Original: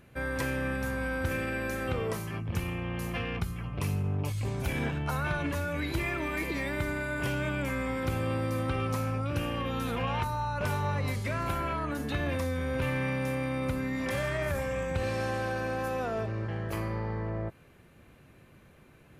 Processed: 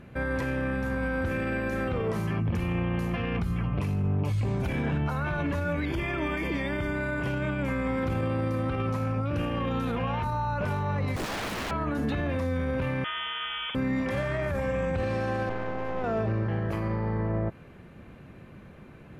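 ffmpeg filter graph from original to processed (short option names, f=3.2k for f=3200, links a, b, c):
-filter_complex "[0:a]asettb=1/sr,asplit=3[a][b][c];[a]atrim=end=5.854[d];[b]atrim=start=5.85:end=6.96,asetpts=PTS-STARTPTS,afade=t=in:d=0.004:c=qsin,afade=t=out:st=1.106:d=0.004:c=qsin,asuperstop=centerf=3900:order=8:qfactor=4.8,equalizer=f=3.6k:t=o:w=0.28:g=14.5[e];[c]atrim=start=6.956[f];[d][e]acrossfade=d=0.004:c1=hsin:c2=qsin[g];[g][f]acrossfade=d=0.004:c1=qsin:c2=hsin,asettb=1/sr,asplit=3[h][i][j];[h]atrim=end=11.164[k];[i]atrim=start=11.16:end=11.71,asetpts=PTS-STARTPTS,afade=t=in:d=0.004:c=qsin,afade=t=out:st=0.546:d=0.004:c=qsin,acrossover=split=320|3000[l][m][n];[m]acompressor=threshold=-35dB:ratio=6:attack=3.2:release=140:knee=2.83:detection=peak[o];[l][o][n]amix=inputs=3:normalize=0,aeval=exprs='(mod(44.7*val(0)+1,2)-1)/44.7':c=same[p];[j]atrim=start=11.706[q];[k][p]acrossfade=d=0.004:c1=hsin:c2=qsin[r];[r][q]acrossfade=d=0.004:c1=qsin:c2=hsin,asettb=1/sr,asplit=3[s][t][u];[s]atrim=end=13.044[v];[t]atrim=start=13.04:end=13.75,asetpts=PTS-STARTPTS,afade=t=in:d=0.004:c=qsin,afade=t=out:st=0.706:d=0.004:c=qsin,highpass=f=730:p=1,lowpass=f=3.1k:t=q:w=0.5098,lowpass=f=3.1k:t=q:w=0.6013,lowpass=f=3.1k:t=q:w=0.9,lowpass=f=3.1k:t=q:w=2.563,afreqshift=-3600[w];[u]atrim=start=13.746[x];[v][w]acrossfade=d=0.004:c1=hsin:c2=qsin[y];[y][x]acrossfade=d=0.004:c1=qsin:c2=hsin,asettb=1/sr,asplit=3[z][aa][ab];[z]atrim=end=15.494[ac];[aa]atrim=start=15.49:end=16.04,asetpts=PTS-STARTPTS,afade=t=in:d=0.004:c=qsin,afade=t=out:st=0.546:d=0.004:c=qsin,lowpass=f=1.9k:p=1,aeval=exprs='max(val(0),0)':c=same[ad];[ab]atrim=start=16.036[ae];[ac][ad]acrossfade=d=0.004:c1=hsin:c2=qsin[af];[af][ae]acrossfade=d=0.004:c1=qsin:c2=hsin,alimiter=level_in=5dB:limit=-24dB:level=0:latency=1:release=44,volume=-5dB,lowpass=f=2.1k:p=1,equalizer=f=200:w=2.8:g=4.5,volume=8dB"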